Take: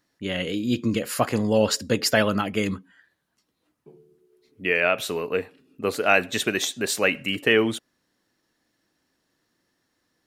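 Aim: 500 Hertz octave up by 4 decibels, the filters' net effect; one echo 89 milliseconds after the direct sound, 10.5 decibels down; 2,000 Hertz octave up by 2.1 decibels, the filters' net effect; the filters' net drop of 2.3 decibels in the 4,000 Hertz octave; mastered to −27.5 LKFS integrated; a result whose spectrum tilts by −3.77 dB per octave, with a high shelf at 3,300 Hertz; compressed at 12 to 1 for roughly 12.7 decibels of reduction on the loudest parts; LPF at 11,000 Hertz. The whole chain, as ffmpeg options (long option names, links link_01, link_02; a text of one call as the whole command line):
ffmpeg -i in.wav -af "lowpass=11000,equalizer=frequency=500:width_type=o:gain=4.5,equalizer=frequency=2000:width_type=o:gain=3.5,highshelf=frequency=3300:gain=4,equalizer=frequency=4000:width_type=o:gain=-8,acompressor=threshold=-24dB:ratio=12,aecho=1:1:89:0.299,volume=2dB" out.wav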